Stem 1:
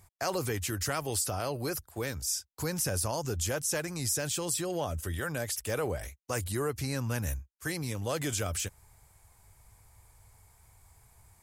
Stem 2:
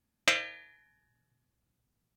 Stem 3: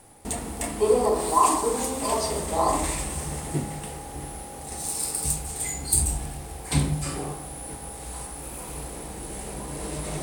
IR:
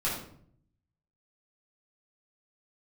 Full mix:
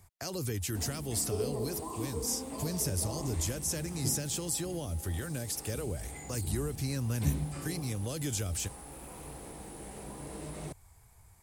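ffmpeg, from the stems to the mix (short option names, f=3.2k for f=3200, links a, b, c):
-filter_complex "[0:a]volume=-1.5dB[a];[2:a]highpass=f=98:p=1,acrossover=split=2700[b][c];[c]acompressor=threshold=-39dB:ratio=4:attack=1:release=60[d];[b][d]amix=inputs=2:normalize=0,adelay=500,volume=-8.5dB[e];[a][e]amix=inputs=2:normalize=0,acrossover=split=390|3000[f][g][h];[g]acompressor=threshold=-46dB:ratio=6[i];[f][i][h]amix=inputs=3:normalize=0,lowshelf=f=320:g=2.5"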